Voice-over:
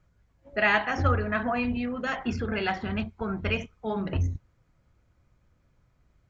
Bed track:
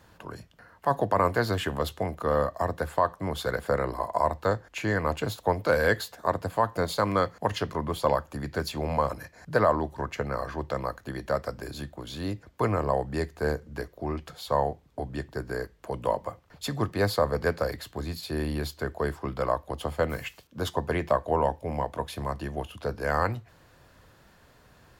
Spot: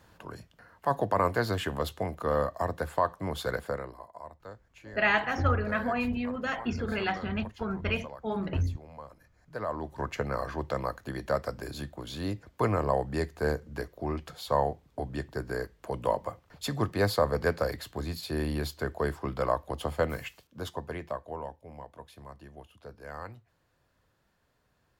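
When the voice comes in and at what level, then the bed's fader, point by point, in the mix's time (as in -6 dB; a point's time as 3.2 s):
4.40 s, -2.0 dB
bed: 3.57 s -2.5 dB
4.13 s -20 dB
9.36 s -20 dB
10.04 s -1 dB
19.98 s -1 dB
21.6 s -15.5 dB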